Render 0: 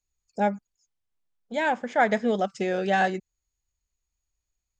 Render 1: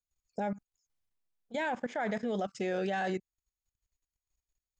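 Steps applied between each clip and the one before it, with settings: level held to a coarse grid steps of 16 dB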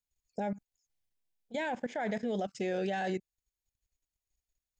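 peaking EQ 1.2 kHz -9 dB 0.53 oct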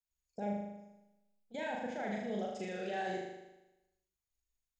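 flutter echo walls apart 6.7 m, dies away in 0.98 s; trim -7.5 dB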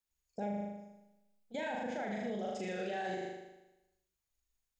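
peak limiter -33 dBFS, peak gain reduction 7 dB; trim +3 dB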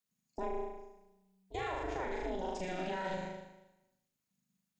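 ring modulator 190 Hz; trim +3.5 dB

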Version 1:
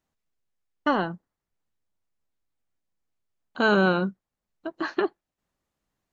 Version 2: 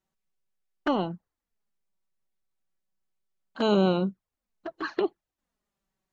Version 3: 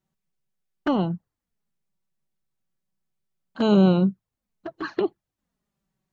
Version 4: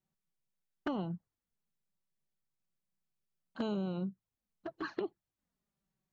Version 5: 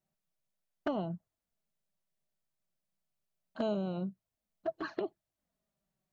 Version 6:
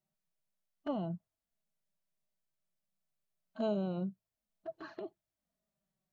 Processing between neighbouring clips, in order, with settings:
touch-sensitive flanger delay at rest 5.3 ms, full sweep at -22 dBFS
peaking EQ 130 Hz +11 dB 1.8 oct
compression 8:1, threshold -25 dBFS, peak gain reduction 13 dB; trim -7.5 dB
peaking EQ 640 Hz +12.5 dB 0.26 oct
harmonic-percussive split percussive -11 dB

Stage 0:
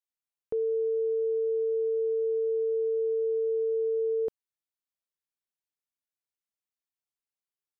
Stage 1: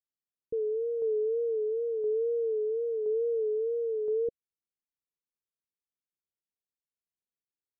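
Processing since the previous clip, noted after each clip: wow and flutter 83 cents; steep low-pass 520 Hz 72 dB/octave; tremolo saw down 0.98 Hz, depth 35%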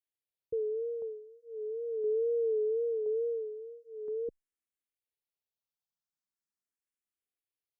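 barber-pole phaser +0.41 Hz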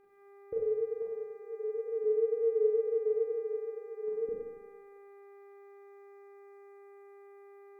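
mains buzz 400 Hz, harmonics 6, -64 dBFS -9 dB/octave; dynamic bell 380 Hz, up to -4 dB, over -41 dBFS, Q 1.1; Schroeder reverb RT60 1.1 s, combs from 31 ms, DRR -4.5 dB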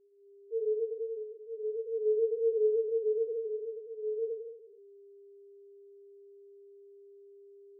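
loudest bins only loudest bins 1; trim +5 dB

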